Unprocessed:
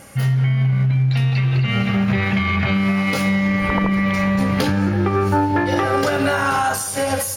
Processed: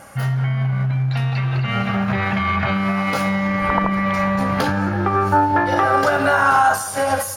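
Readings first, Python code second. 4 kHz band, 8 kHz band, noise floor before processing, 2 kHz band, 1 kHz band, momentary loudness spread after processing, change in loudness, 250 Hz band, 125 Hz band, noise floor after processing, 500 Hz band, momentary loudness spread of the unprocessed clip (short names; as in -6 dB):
-3.0 dB, -3.0 dB, -25 dBFS, +1.0 dB, +5.0 dB, 5 LU, 0.0 dB, -3.0 dB, -3.0 dB, -27 dBFS, +0.5 dB, 1 LU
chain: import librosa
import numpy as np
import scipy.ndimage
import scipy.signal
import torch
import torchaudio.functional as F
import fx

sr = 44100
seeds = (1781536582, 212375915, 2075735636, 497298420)

y = fx.band_shelf(x, sr, hz=1000.0, db=8.0, octaves=1.7)
y = F.gain(torch.from_numpy(y), -3.0).numpy()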